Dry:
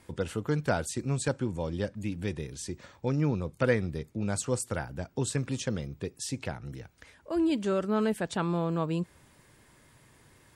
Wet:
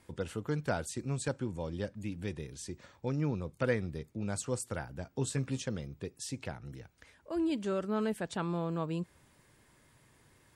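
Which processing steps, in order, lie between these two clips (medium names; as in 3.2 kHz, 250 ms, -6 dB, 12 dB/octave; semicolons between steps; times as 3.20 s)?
5.05–5.62 s: doubling 15 ms -8 dB; trim -5 dB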